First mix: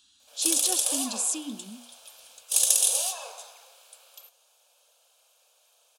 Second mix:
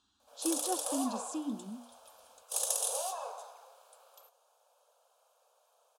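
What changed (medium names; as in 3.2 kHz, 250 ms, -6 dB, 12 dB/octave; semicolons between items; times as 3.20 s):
speech: add distance through air 58 m; master: add resonant high shelf 1.6 kHz -11 dB, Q 1.5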